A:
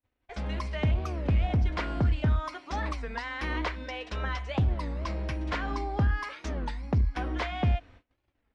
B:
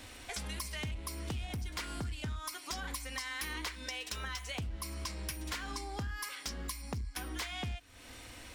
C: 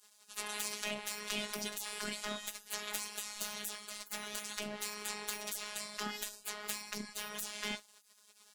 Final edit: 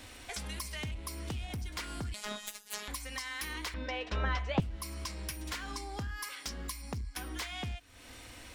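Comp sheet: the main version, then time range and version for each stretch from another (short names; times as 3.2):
B
2.14–2.88 from C
3.74–4.6 from A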